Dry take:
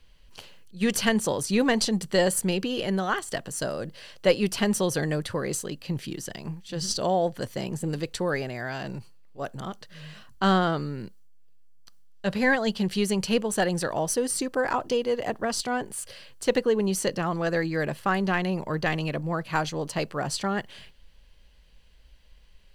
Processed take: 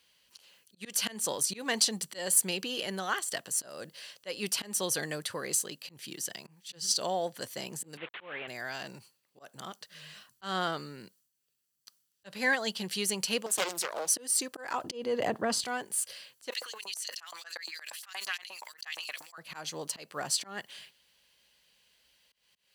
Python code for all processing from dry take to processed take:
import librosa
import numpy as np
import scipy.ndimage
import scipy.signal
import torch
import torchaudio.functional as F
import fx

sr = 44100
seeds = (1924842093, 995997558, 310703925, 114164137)

y = fx.chain(x, sr, fx.delta_mod(bps=16000, step_db=-35.0),
    fx.tilt_eq(slope=2.5), at=(7.97, 8.48))
y = fx.chain(y, sr, fx.highpass(hz=380.0, slope=6),
    fx.doppler_dist(depth_ms=0.74), at=(13.46, 14.16))
y = fx.chain(y, sr, fx.tilt_eq(slope=-3.0),
    fx.notch(hz=5700.0, q=18.0),
    fx.env_flatten(amount_pct=70), at=(14.84, 15.64))
y = fx.chain(y, sr, fx.filter_lfo_highpass(shape='saw_up', hz=8.5, low_hz=760.0, high_hz=7300.0, q=1.9),
    fx.sustainer(db_per_s=130.0), at=(16.5, 19.38))
y = fx.auto_swell(y, sr, attack_ms=208.0)
y = scipy.signal.sosfilt(scipy.signal.butter(2, 110.0, 'highpass', fs=sr, output='sos'), y)
y = fx.tilt_eq(y, sr, slope=3.0)
y = F.gain(torch.from_numpy(y), -5.5).numpy()